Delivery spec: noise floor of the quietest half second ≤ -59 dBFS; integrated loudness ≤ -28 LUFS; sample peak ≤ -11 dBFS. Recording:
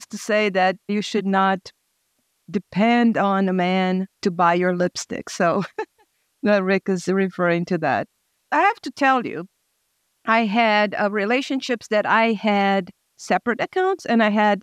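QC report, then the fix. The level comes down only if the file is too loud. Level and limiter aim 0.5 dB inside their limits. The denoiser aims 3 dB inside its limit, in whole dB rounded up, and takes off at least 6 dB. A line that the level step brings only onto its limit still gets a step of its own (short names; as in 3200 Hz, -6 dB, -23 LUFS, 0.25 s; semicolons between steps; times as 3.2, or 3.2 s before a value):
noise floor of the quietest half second -70 dBFS: OK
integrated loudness -20.5 LUFS: fail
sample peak -4.5 dBFS: fail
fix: gain -8 dB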